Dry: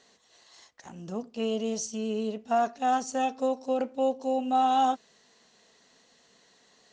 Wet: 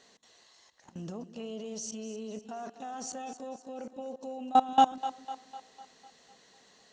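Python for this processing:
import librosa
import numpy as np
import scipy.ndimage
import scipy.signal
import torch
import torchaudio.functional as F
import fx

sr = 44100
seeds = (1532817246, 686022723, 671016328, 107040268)

y = fx.level_steps(x, sr, step_db=22)
y = fx.echo_split(y, sr, split_hz=350.0, low_ms=134, high_ms=251, feedback_pct=52, wet_db=-13.0)
y = F.gain(torch.from_numpy(y), 4.5).numpy()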